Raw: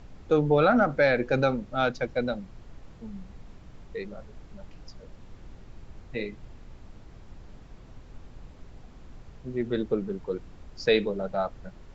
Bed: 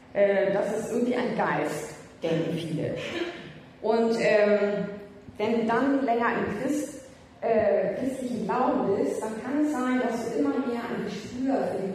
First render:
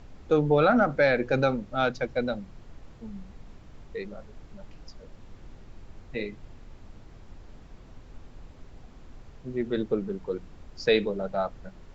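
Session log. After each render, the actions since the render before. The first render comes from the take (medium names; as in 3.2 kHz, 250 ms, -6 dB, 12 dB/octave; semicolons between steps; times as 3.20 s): de-hum 60 Hz, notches 3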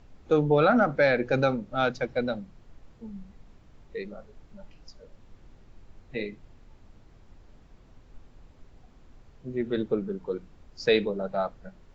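noise print and reduce 6 dB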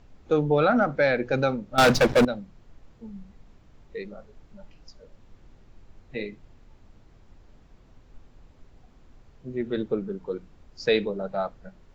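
1.78–2.25 s: waveshaping leveller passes 5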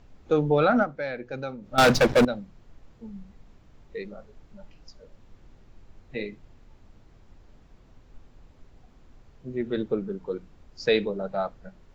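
0.82–1.66 s: dip -10 dB, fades 0.31 s exponential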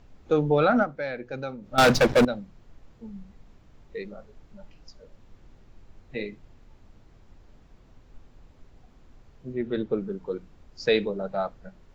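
9.53–9.93 s: distance through air 63 m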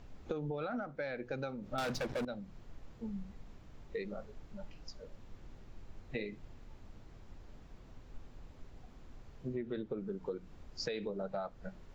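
peak limiter -18.5 dBFS, peak gain reduction 8 dB; compression 12:1, threshold -35 dBFS, peak gain reduction 14.5 dB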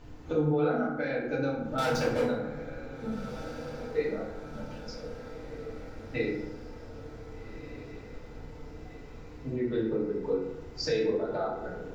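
echo that smears into a reverb 1585 ms, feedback 57%, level -12 dB; FDN reverb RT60 0.94 s, low-frequency decay 0.95×, high-frequency decay 0.5×, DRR -7.5 dB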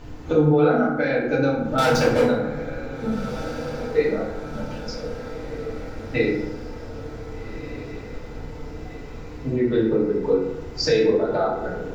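trim +9.5 dB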